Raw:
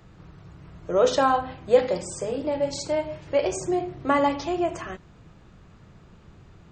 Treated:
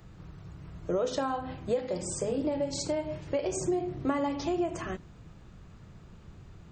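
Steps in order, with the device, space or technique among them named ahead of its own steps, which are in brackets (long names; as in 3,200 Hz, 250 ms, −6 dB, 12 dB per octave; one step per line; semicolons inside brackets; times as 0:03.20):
ASMR close-microphone chain (low-shelf EQ 180 Hz +5.5 dB; downward compressor 5 to 1, threshold −26 dBFS, peak gain reduction 13.5 dB; high-shelf EQ 6,100 Hz +6.5 dB)
dynamic equaliser 270 Hz, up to +5 dB, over −43 dBFS, Q 0.8
level −3.5 dB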